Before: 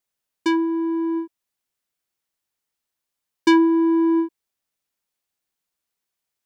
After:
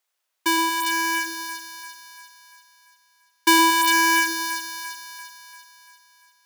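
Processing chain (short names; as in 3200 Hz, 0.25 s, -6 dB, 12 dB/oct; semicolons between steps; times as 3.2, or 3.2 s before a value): half-waves squared off; HPF 660 Hz 12 dB/oct; split-band echo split 1200 Hz, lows 0.116 s, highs 0.343 s, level -6 dB; gain +2.5 dB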